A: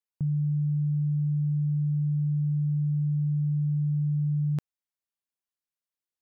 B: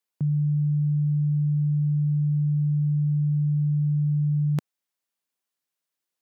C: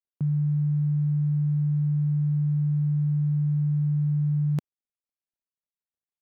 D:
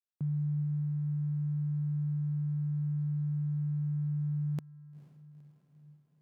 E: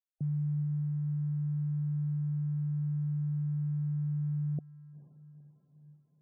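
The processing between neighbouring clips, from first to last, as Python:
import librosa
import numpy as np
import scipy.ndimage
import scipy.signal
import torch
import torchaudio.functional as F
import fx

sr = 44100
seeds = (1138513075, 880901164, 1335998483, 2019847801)

y1 = scipy.signal.sosfilt(scipy.signal.butter(2, 160.0, 'highpass', fs=sr, output='sos'), x)
y1 = F.gain(torch.from_numpy(y1), 7.0).numpy()
y2 = scipy.signal.medfilt(y1, 41)
y2 = F.gain(torch.from_numpy(y2), -1.0).numpy()
y3 = fx.echo_diffused(y2, sr, ms=470, feedback_pct=61, wet_db=-16.0)
y3 = F.gain(torch.from_numpy(y3), -7.5).numpy()
y4 = fx.spec_topn(y3, sr, count=32)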